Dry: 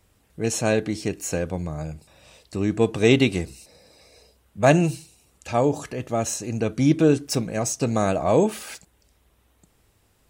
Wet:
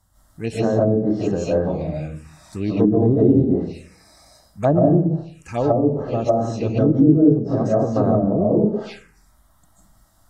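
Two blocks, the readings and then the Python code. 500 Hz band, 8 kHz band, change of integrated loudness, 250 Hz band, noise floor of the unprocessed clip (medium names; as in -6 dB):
+4.0 dB, under -15 dB, +4.0 dB, +6.0 dB, -64 dBFS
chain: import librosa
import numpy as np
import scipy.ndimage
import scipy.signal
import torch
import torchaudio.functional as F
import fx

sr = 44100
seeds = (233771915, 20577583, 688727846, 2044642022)

y = fx.rev_freeverb(x, sr, rt60_s=0.57, hf_ratio=0.65, predelay_ms=110, drr_db=-8.0)
y = fx.env_phaser(y, sr, low_hz=420.0, high_hz=2400.0, full_db=-15.5)
y = fx.env_lowpass_down(y, sr, base_hz=340.0, full_db=-10.0)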